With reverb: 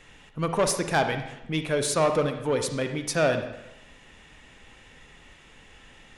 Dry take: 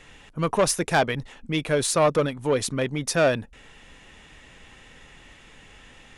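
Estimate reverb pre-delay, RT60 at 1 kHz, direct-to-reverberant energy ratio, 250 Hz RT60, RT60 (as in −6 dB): 38 ms, 0.90 s, 6.5 dB, 0.85 s, 0.90 s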